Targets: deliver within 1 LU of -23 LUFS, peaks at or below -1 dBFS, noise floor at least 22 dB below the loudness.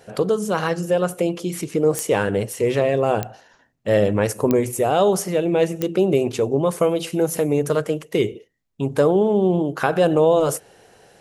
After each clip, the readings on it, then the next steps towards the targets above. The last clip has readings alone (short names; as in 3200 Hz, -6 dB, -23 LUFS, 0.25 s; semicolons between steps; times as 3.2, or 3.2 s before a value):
clicks 4; loudness -20.5 LUFS; peak -4.0 dBFS; loudness target -23.0 LUFS
-> de-click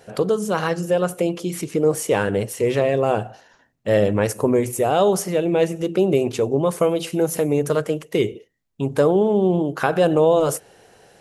clicks 0; loudness -20.5 LUFS; peak -4.0 dBFS; loudness target -23.0 LUFS
-> gain -2.5 dB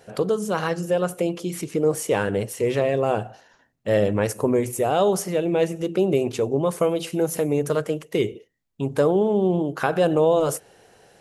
loudness -23.0 LUFS; peak -6.5 dBFS; noise floor -61 dBFS